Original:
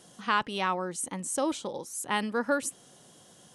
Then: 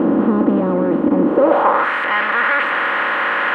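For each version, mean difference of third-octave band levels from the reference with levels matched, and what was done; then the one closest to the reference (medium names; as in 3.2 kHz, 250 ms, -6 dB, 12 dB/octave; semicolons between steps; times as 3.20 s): 15.0 dB: spectral levelling over time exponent 0.2; waveshaping leveller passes 5; band-pass sweep 270 Hz -> 1.9 kHz, 1.24–1.91 s; distance through air 460 m; trim +5.5 dB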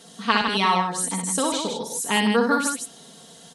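6.0 dB: high-pass 42 Hz; peaking EQ 4 kHz +7.5 dB 0.44 oct; comb 4.4 ms, depth 79%; loudspeakers at several distances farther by 21 m -5 dB, 54 m -6 dB; trim +4.5 dB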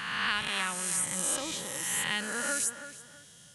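11.0 dB: reverse spectral sustain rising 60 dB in 1.63 s; high-order bell 510 Hz -13.5 dB 2.9 oct; tape echo 324 ms, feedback 32%, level -10 dB, low-pass 3.1 kHz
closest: second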